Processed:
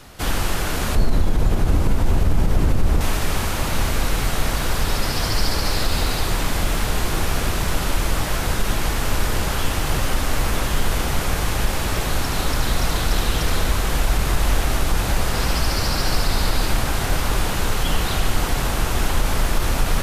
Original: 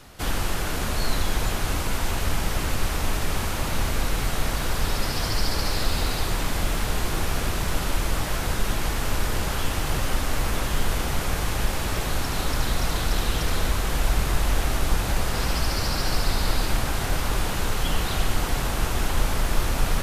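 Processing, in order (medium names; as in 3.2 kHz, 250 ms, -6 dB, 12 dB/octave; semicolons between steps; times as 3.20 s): 0.95–3.01 s: tilt shelf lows +8 dB, about 730 Hz; loudness maximiser +11 dB; trim -7 dB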